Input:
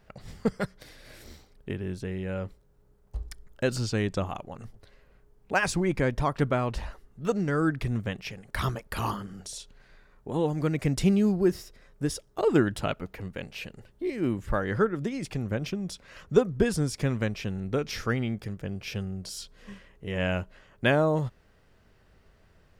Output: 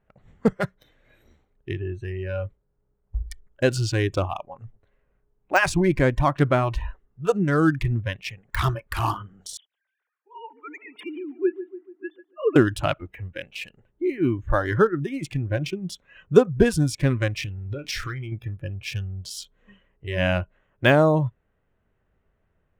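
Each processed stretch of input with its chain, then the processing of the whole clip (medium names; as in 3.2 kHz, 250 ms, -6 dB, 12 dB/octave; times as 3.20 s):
9.57–12.56 s: formants replaced by sine waves + high-pass 1.3 kHz 6 dB/octave + filtered feedback delay 144 ms, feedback 70%, low-pass 3 kHz, level -12 dB
17.37–18.32 s: waveshaping leveller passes 1 + compression 12:1, threshold -30 dBFS + doubling 29 ms -14 dB
whole clip: local Wiener filter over 9 samples; de-esser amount 65%; spectral noise reduction 16 dB; trim +6.5 dB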